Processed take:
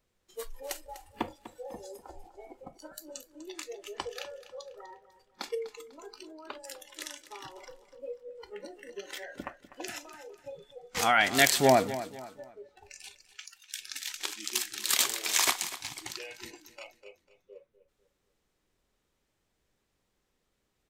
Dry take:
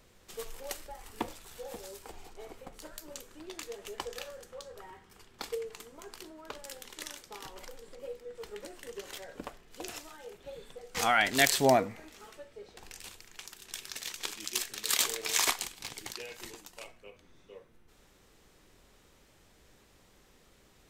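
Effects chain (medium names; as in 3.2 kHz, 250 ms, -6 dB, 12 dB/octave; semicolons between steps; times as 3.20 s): spectral noise reduction 18 dB; 9.12–9.98 s: peaking EQ 1.8 kHz +8.5 dB 0.5 oct; 13.32–13.80 s: steep high-pass 900 Hz; feedback delay 248 ms, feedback 35%, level -14.5 dB; trim +2 dB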